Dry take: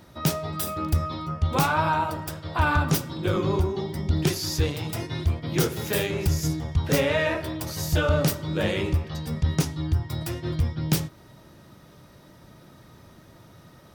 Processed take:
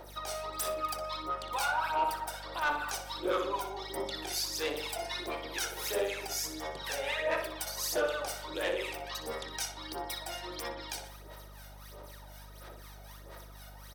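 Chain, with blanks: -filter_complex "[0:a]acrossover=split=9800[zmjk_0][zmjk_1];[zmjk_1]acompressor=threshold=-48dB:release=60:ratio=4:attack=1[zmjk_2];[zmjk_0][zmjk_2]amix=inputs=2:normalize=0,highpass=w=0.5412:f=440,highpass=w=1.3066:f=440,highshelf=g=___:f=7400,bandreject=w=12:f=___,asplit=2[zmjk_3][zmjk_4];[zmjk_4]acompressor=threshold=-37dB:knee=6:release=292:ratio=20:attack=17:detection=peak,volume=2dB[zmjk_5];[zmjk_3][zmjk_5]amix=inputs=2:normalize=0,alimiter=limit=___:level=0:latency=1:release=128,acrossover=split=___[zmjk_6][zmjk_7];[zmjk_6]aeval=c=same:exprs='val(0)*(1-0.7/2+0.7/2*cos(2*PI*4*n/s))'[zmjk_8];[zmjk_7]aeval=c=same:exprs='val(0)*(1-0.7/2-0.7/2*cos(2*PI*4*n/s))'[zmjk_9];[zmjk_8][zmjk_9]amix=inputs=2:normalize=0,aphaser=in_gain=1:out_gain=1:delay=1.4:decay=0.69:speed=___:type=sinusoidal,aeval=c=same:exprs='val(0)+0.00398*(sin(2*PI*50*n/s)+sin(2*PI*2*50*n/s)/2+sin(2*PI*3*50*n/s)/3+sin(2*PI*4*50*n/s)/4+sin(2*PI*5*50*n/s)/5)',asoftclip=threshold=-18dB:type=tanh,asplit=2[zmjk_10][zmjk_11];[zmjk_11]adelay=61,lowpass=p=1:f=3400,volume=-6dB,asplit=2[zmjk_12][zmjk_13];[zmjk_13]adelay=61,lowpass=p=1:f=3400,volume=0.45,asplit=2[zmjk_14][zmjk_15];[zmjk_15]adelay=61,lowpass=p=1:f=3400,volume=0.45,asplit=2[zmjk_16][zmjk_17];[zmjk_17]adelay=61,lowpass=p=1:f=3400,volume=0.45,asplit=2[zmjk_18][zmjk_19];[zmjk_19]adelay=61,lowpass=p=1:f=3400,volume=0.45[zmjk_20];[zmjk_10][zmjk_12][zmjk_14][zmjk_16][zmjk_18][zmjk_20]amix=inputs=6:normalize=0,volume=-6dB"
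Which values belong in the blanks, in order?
9.5, 7000, -16dB, 980, 1.5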